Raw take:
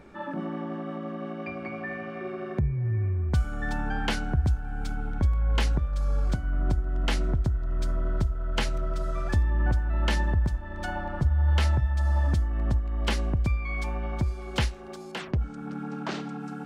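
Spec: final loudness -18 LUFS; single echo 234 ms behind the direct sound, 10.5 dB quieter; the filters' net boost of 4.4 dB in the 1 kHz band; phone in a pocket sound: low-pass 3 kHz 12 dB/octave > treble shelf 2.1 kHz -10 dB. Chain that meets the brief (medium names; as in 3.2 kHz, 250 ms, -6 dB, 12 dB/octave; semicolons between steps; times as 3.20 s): low-pass 3 kHz 12 dB/octave; peaking EQ 1 kHz +8 dB; treble shelf 2.1 kHz -10 dB; delay 234 ms -10.5 dB; trim +10 dB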